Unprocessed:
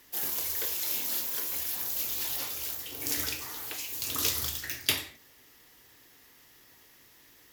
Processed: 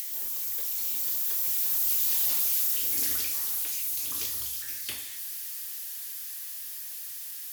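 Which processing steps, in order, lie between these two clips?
spike at every zero crossing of −20.5 dBFS
source passing by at 0:02.34, 21 m/s, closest 21 metres
upward compression, threshold −30 dBFS
level −3.5 dB

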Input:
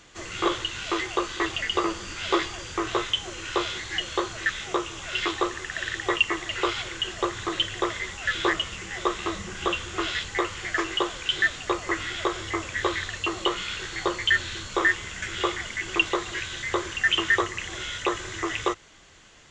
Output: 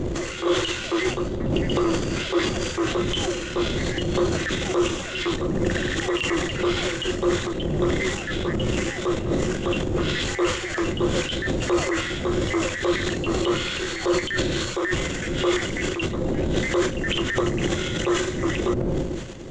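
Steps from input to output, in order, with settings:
wind on the microphone 220 Hz −24 dBFS
reversed playback
downward compressor 12 to 1, threshold −26 dBFS, peak gain reduction 21.5 dB
reversed playback
transient designer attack −4 dB, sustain +11 dB
hollow resonant body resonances 360/520 Hz, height 11 dB, ringing for 55 ms
level +3 dB

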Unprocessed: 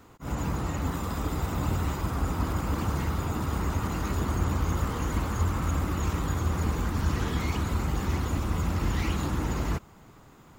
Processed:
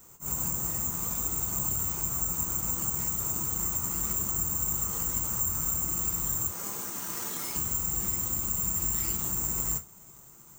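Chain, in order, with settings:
0:06.47–0:07.55: Bessel high-pass filter 350 Hz, order 2
downward compressor 3 to 1, threshold −28 dBFS, peak gain reduction 6 dB
bad sample-rate conversion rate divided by 6×, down none, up zero stuff
reverb whose tail is shaped and stops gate 90 ms falling, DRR 5 dB
level −8.5 dB

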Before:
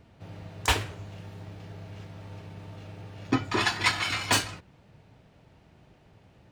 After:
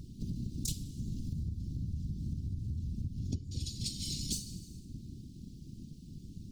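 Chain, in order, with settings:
inverse Chebyshev band-stop filter 610–1,600 Hz, stop band 70 dB
dense smooth reverb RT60 0.9 s, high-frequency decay 0.8×, DRR 13 dB
random phases in short frames
0:01.32–0:03.76: parametric band 82 Hz +12 dB 1.1 octaves
downward compressor 12 to 1, threshold −45 dBFS, peak gain reduction 28.5 dB
level +11.5 dB

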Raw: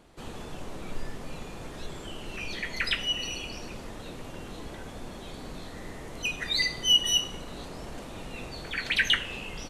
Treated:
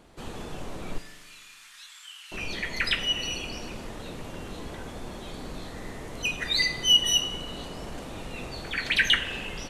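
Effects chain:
0:00.98–0:02.32: Bessel high-pass filter 2,100 Hz, order 6
spring reverb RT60 1.5 s, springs 41 ms, chirp 50 ms, DRR 12 dB
level +2 dB

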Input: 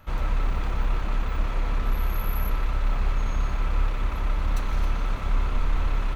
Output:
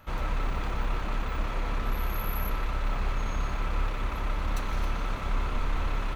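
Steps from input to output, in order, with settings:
low-shelf EQ 110 Hz −6 dB

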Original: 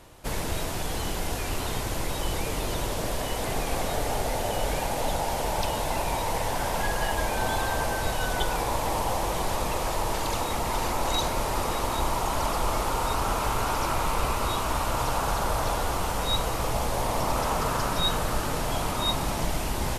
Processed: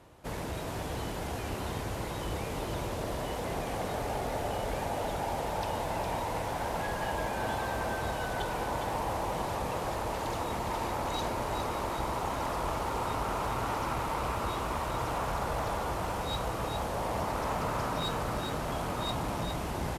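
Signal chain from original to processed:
high-pass filter 55 Hz
high-shelf EQ 2,600 Hz −9 dB
asymmetric clip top −28 dBFS
on a send: single-tap delay 410 ms −6.5 dB
on the sum: level −3.5 dB

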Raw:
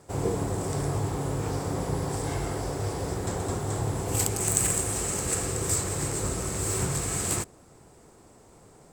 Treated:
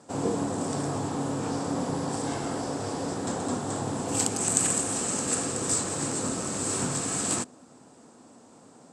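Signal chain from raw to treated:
loudspeaker in its box 190–8,900 Hz, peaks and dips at 250 Hz +10 dB, 390 Hz −6 dB, 2,100 Hz −6 dB
level +2 dB

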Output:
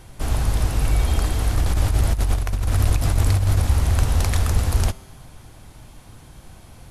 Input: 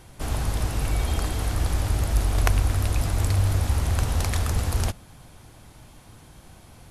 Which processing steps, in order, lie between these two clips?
low-shelf EQ 62 Hz +6.5 dB
0:01.56–0:03.63: compressor whose output falls as the input rises −19 dBFS, ratio −0.5
tuned comb filter 130 Hz, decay 1.6 s, mix 50%
level +8 dB

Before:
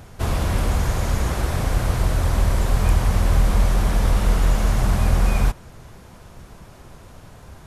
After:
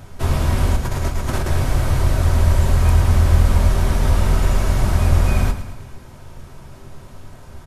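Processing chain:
0:00.76–0:01.48: compressor whose output falls as the input rises −24 dBFS, ratio −1
repeating echo 109 ms, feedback 56%, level −12 dB
convolution reverb RT60 0.25 s, pre-delay 3 ms, DRR 5.5 dB

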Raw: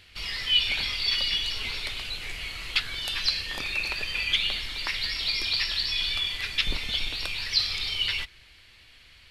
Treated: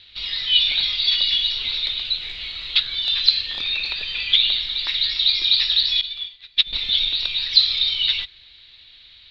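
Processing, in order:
low-pass with resonance 3,800 Hz, resonance Q 12
0:06.01–0:06.73: expander for the loud parts 2.5 to 1, over −24 dBFS
level −4 dB

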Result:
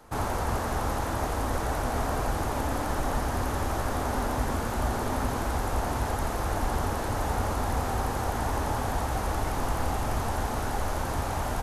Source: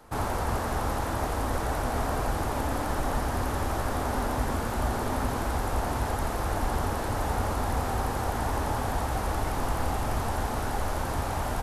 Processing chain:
parametric band 6,400 Hz +3 dB 0.21 octaves

